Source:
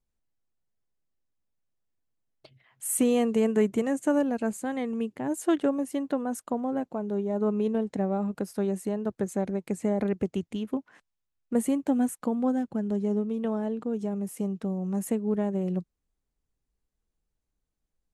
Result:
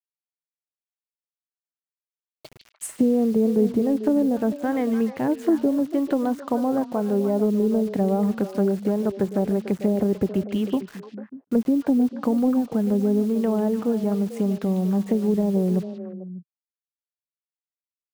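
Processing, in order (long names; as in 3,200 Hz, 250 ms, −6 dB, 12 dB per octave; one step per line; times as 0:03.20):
treble cut that deepens with the level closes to 450 Hz, closed at −21.5 dBFS
in parallel at +1 dB: brickwall limiter −25.5 dBFS, peak gain reduction 11.5 dB
on the sum: bit-depth reduction 8 bits, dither none
echo through a band-pass that steps 148 ms, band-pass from 3,600 Hz, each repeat −1.4 octaves, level −4 dB
level +2 dB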